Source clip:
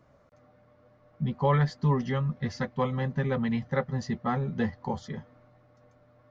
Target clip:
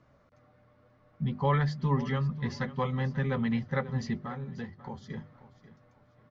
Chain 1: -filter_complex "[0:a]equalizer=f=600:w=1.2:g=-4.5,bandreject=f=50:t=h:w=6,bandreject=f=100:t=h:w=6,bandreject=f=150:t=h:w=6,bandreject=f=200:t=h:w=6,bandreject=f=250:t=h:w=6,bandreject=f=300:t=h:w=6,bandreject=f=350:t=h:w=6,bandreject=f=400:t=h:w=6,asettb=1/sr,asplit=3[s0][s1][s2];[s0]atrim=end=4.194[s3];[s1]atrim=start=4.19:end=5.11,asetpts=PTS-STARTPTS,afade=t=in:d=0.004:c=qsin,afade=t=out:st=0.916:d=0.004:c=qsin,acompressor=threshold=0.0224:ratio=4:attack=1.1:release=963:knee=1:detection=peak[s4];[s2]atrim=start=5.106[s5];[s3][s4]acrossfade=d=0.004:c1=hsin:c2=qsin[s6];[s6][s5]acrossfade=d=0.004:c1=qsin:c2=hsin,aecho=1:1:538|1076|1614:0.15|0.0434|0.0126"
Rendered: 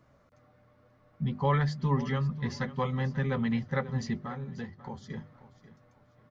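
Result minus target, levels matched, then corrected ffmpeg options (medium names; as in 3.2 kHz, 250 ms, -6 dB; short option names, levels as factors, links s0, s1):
8 kHz band +3.0 dB
-filter_complex "[0:a]lowpass=6000,equalizer=f=600:w=1.2:g=-4.5,bandreject=f=50:t=h:w=6,bandreject=f=100:t=h:w=6,bandreject=f=150:t=h:w=6,bandreject=f=200:t=h:w=6,bandreject=f=250:t=h:w=6,bandreject=f=300:t=h:w=6,bandreject=f=350:t=h:w=6,bandreject=f=400:t=h:w=6,asettb=1/sr,asplit=3[s0][s1][s2];[s0]atrim=end=4.194[s3];[s1]atrim=start=4.19:end=5.11,asetpts=PTS-STARTPTS,afade=t=in:d=0.004:c=qsin,afade=t=out:st=0.916:d=0.004:c=qsin,acompressor=threshold=0.0224:ratio=4:attack=1.1:release=963:knee=1:detection=peak[s4];[s2]atrim=start=5.106[s5];[s3][s4]acrossfade=d=0.004:c1=hsin:c2=qsin[s6];[s6][s5]acrossfade=d=0.004:c1=qsin:c2=hsin,aecho=1:1:538|1076|1614:0.15|0.0434|0.0126"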